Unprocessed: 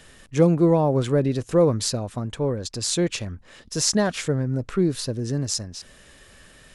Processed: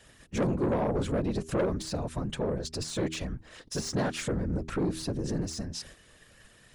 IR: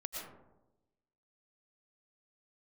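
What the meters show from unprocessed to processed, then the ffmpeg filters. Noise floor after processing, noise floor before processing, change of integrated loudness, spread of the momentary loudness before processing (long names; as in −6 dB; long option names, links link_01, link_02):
−58 dBFS, −51 dBFS, −9.0 dB, 13 LU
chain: -filter_complex "[0:a]agate=range=-7dB:threshold=-47dB:ratio=16:detection=peak,deesser=0.65,afftfilt=real='hypot(re,im)*cos(2*PI*random(0))':imag='hypot(re,im)*sin(2*PI*random(1))':win_size=512:overlap=0.75,asplit=2[link_01][link_02];[link_02]acompressor=threshold=-34dB:ratio=6,volume=2dB[link_03];[link_01][link_03]amix=inputs=2:normalize=0,bandreject=frequency=79.64:width_type=h:width=4,bandreject=frequency=159.28:width_type=h:width=4,bandreject=frequency=238.92:width_type=h:width=4,bandreject=frequency=318.56:width_type=h:width=4,bandreject=frequency=398.2:width_type=h:width=4,asoftclip=type=tanh:threshold=-21dB,volume=-1.5dB"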